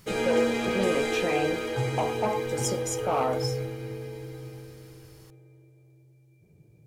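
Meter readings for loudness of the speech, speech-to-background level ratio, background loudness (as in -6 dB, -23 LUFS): -30.5 LUFS, -0.5 dB, -30.0 LUFS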